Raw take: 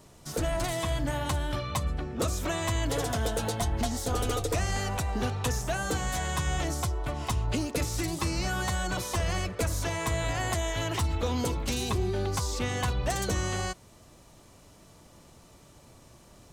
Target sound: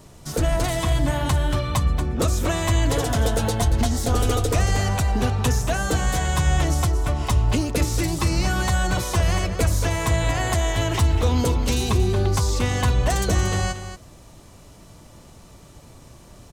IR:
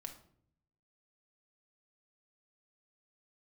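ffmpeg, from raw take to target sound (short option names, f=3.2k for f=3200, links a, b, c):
-af "lowshelf=f=160:g=5.5,aecho=1:1:231:0.299,volume=5.5dB"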